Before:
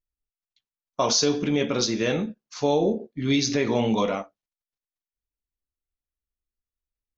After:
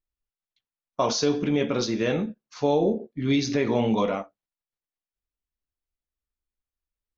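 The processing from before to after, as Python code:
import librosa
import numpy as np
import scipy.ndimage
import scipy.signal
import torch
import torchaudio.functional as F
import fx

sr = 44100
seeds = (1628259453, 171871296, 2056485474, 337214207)

y = fx.lowpass(x, sr, hz=2800.0, slope=6)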